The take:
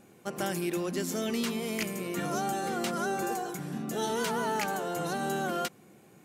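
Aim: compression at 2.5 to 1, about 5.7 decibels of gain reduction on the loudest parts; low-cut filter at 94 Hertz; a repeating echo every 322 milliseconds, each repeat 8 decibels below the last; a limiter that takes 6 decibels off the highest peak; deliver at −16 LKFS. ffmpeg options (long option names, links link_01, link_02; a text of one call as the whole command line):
ffmpeg -i in.wav -af "highpass=94,acompressor=threshold=-36dB:ratio=2.5,alimiter=level_in=5.5dB:limit=-24dB:level=0:latency=1,volume=-5.5dB,aecho=1:1:322|644|966|1288|1610:0.398|0.159|0.0637|0.0255|0.0102,volume=22dB" out.wav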